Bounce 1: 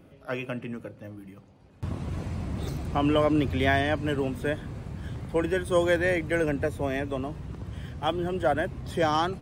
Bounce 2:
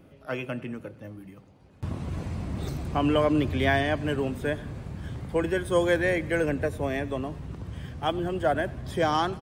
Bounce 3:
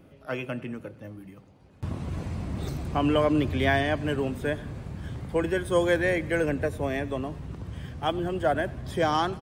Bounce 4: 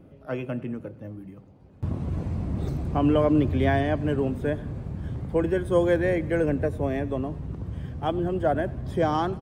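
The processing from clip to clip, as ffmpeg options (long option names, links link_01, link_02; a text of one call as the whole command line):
ffmpeg -i in.wav -af "aecho=1:1:95|190|285|380:0.0794|0.0445|0.0249|0.0139" out.wav
ffmpeg -i in.wav -af anull out.wav
ffmpeg -i in.wav -af "tiltshelf=frequency=1100:gain=6,volume=-2dB" out.wav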